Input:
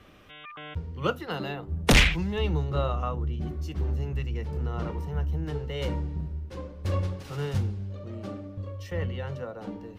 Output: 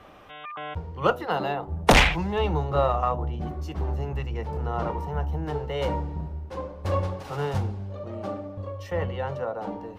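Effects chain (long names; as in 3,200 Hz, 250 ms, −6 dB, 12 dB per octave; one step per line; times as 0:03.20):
parametric band 810 Hz +13 dB 1.4 octaves
hum removal 122.7 Hz, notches 8
in parallel at −11 dB: asymmetric clip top −20.5 dBFS
on the sum: level −2.5 dB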